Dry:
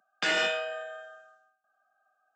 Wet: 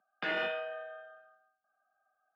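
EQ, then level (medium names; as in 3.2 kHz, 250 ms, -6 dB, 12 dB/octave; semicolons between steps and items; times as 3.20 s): distance through air 410 m; -3.0 dB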